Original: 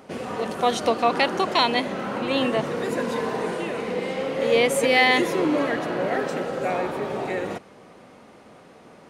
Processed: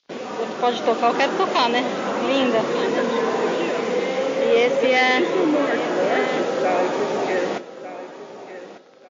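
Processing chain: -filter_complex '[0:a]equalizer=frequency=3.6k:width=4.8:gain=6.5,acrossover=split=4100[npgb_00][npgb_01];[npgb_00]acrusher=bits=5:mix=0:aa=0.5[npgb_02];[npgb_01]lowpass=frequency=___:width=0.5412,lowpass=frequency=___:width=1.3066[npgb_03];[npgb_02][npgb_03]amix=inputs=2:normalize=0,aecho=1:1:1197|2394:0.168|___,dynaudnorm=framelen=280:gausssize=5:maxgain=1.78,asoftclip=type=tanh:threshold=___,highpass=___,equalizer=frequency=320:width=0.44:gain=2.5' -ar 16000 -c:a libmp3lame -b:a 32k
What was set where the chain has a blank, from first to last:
5.2k, 5.2k, 0.0403, 0.299, 230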